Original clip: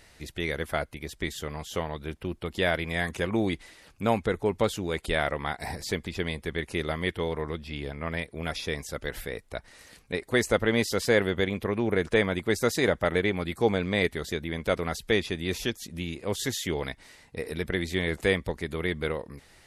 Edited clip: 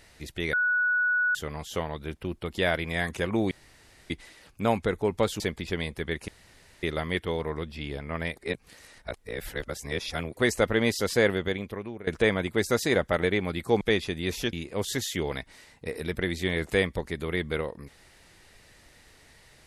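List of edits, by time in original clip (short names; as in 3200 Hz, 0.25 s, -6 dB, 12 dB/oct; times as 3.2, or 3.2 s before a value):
0.53–1.35 bleep 1470 Hz -21.5 dBFS
3.51 insert room tone 0.59 s
4.81–5.87 cut
6.75 insert room tone 0.55 s
8.29–10.29 reverse
11.19–11.99 fade out, to -19.5 dB
13.73–15.03 cut
15.75–16.04 cut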